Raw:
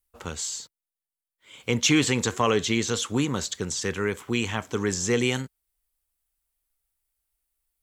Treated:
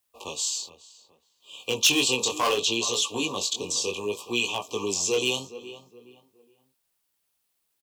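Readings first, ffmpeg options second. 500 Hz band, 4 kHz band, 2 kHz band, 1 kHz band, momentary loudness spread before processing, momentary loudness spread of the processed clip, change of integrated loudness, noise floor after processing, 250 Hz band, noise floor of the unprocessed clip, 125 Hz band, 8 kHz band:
-1.5 dB, +5.0 dB, -0.5 dB, 0.0 dB, 11 LU, 15 LU, +0.5 dB, -76 dBFS, -7.0 dB, under -85 dBFS, -13.0 dB, +2.5 dB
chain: -filter_complex "[0:a]afftfilt=real='re*(1-between(b*sr/4096,1200,2400))':imag='im*(1-between(b*sr/4096,1200,2400))':win_size=4096:overlap=0.75,highpass=f=74:p=1,acontrast=74,acrossover=split=320 4500:gain=0.2 1 0.2[a][b][c];[a][b][c]amix=inputs=3:normalize=0,asplit=2[d][e];[e]adelay=418,lowpass=f=2.1k:p=1,volume=-14.5dB,asplit=2[f][g];[g]adelay=418,lowpass=f=2.1k:p=1,volume=0.33,asplit=2[h][i];[i]adelay=418,lowpass=f=2.1k:p=1,volume=0.33[j];[d][f][h][j]amix=inputs=4:normalize=0,asoftclip=type=hard:threshold=-13.5dB,flanger=delay=16:depth=7.3:speed=0.66,crystalizer=i=3.5:c=0,acrusher=bits=11:mix=0:aa=0.000001,adynamicequalizer=threshold=0.0112:dfrequency=220:dqfactor=1.1:tfrequency=220:tqfactor=1.1:attack=5:release=100:ratio=0.375:range=2.5:mode=cutabove:tftype=bell,volume=-2.5dB"

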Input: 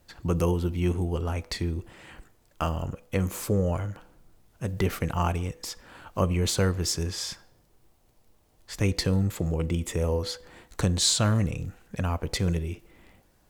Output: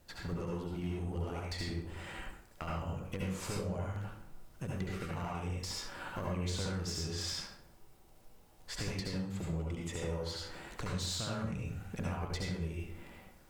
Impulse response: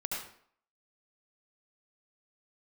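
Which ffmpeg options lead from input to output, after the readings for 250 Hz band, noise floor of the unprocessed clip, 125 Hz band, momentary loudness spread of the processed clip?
-10.0 dB, -63 dBFS, -11.0 dB, 9 LU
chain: -filter_complex "[0:a]acrossover=split=8100[a][b];[b]acompressor=threshold=-56dB:ratio=4:attack=1:release=60[c];[a][c]amix=inputs=2:normalize=0,bandreject=f=105.3:t=h:w=4,bandreject=f=210.6:t=h:w=4,acompressor=threshold=-35dB:ratio=16,aeval=exprs='clip(val(0),-1,0.0168)':c=same[d];[1:a]atrim=start_sample=2205[e];[d][e]afir=irnorm=-1:irlink=0"

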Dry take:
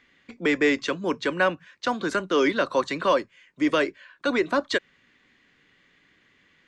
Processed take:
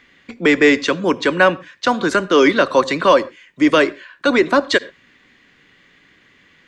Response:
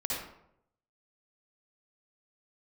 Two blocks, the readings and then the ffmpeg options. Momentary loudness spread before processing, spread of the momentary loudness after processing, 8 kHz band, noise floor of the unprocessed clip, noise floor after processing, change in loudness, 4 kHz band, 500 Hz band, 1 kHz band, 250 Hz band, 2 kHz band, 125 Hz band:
7 LU, 7 LU, +9.0 dB, -63 dBFS, -54 dBFS, +9.0 dB, +9.0 dB, +9.0 dB, +9.0 dB, +9.0 dB, +9.0 dB, +9.0 dB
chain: -filter_complex "[0:a]asplit=2[a][b];[1:a]atrim=start_sample=2205,atrim=end_sample=6174[c];[b][c]afir=irnorm=-1:irlink=0,volume=-23dB[d];[a][d]amix=inputs=2:normalize=0,volume=8.5dB"

